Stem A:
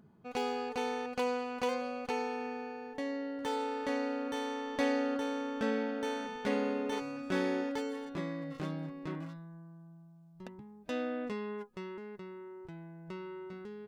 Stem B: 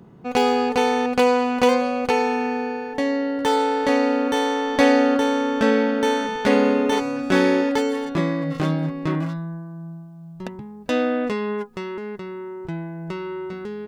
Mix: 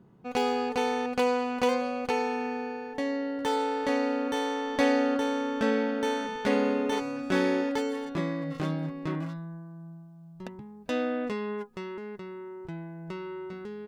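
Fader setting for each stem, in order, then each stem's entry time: -3.0 dB, -11.5 dB; 0.00 s, 0.00 s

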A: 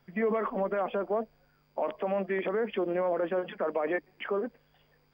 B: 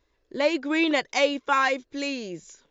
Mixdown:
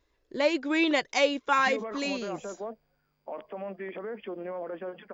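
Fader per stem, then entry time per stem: -7.5 dB, -2.0 dB; 1.50 s, 0.00 s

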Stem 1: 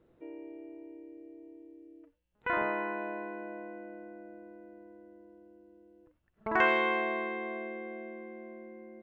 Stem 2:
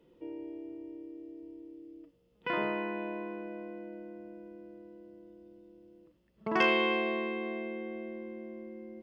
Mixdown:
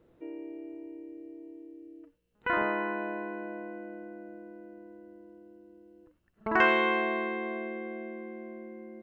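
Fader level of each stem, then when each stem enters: +2.5 dB, -11.5 dB; 0.00 s, 0.00 s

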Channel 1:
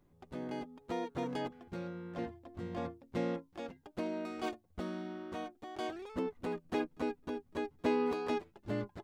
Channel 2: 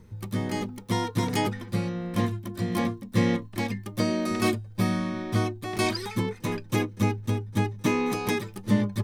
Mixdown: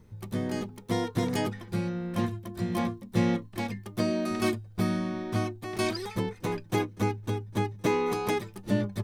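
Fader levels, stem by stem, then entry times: +3.0 dB, -4.5 dB; 0.00 s, 0.00 s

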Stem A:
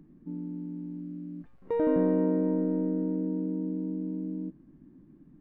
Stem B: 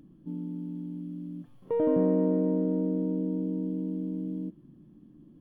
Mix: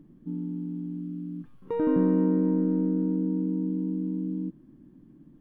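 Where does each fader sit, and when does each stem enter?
0.0 dB, -4.0 dB; 0.00 s, 0.00 s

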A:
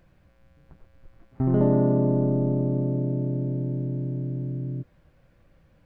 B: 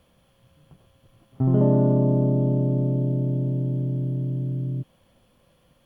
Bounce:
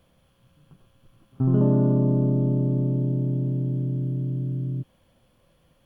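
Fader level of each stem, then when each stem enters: -10.0 dB, -2.5 dB; 0.00 s, 0.00 s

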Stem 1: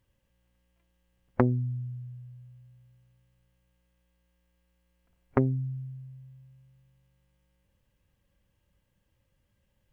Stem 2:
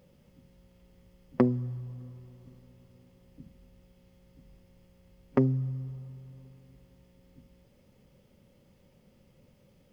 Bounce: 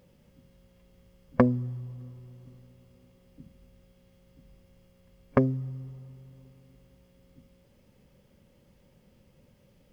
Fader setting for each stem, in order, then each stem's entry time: +2.0 dB, 0.0 dB; 0.00 s, 0.00 s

